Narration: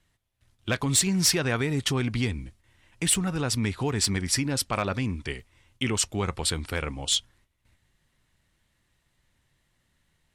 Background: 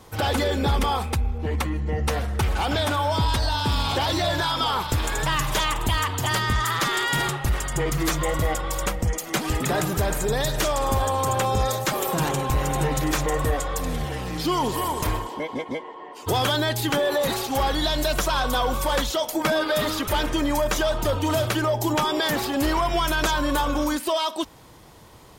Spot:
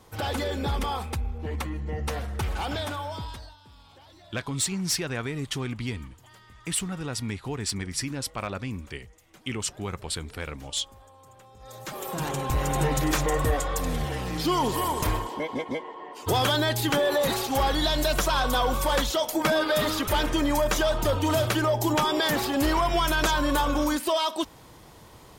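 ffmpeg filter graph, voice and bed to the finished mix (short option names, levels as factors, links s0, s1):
-filter_complex "[0:a]adelay=3650,volume=0.562[s0];[1:a]volume=13.3,afade=t=out:st=2.66:d=0.9:silence=0.0668344,afade=t=in:st=11.6:d=1.22:silence=0.0375837[s1];[s0][s1]amix=inputs=2:normalize=0"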